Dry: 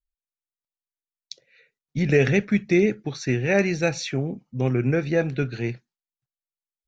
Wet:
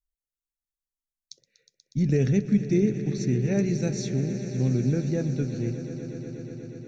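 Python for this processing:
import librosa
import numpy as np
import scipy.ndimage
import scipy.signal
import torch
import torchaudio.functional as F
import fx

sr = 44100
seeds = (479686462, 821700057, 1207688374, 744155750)

y = fx.curve_eq(x, sr, hz=(230.0, 740.0, 2600.0, 6200.0), db=(0, -14, -17, -2))
y = fx.echo_swell(y, sr, ms=121, loudest=5, wet_db=-15)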